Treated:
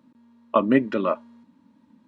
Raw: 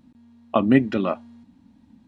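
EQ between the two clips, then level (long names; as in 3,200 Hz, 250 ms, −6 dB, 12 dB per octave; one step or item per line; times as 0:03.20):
high-pass filter 150 Hz 12 dB per octave
Butterworth band-reject 750 Hz, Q 3.1
parametric band 810 Hz +10.5 dB 2 octaves
−5.0 dB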